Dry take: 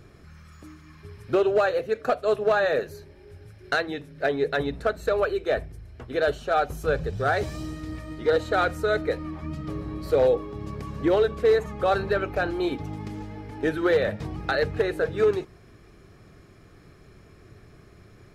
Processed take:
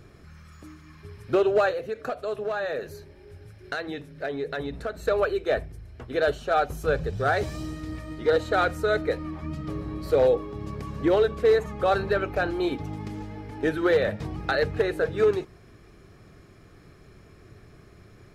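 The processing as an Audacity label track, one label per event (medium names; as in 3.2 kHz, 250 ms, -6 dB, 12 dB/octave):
1.710000	5.020000	compression 2.5:1, threshold -29 dBFS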